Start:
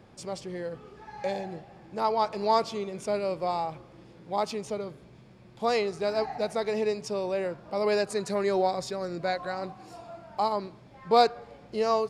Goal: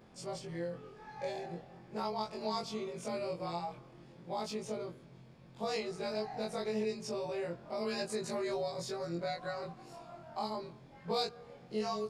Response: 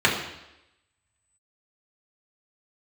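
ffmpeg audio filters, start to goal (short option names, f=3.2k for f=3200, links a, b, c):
-filter_complex "[0:a]afftfilt=real='re':imag='-im':win_size=2048:overlap=0.75,acrossover=split=260|3000[a][b][c];[b]acompressor=threshold=-36dB:ratio=4[d];[a][d][c]amix=inputs=3:normalize=0"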